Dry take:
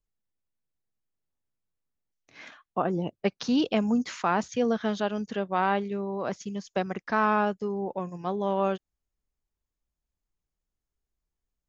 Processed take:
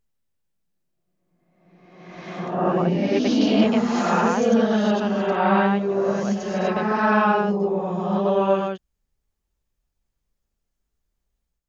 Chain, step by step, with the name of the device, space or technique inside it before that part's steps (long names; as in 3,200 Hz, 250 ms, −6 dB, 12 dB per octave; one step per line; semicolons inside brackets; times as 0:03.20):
reverse reverb (reversed playback; convolution reverb RT60 1.5 s, pre-delay 82 ms, DRR −6 dB; reversed playback)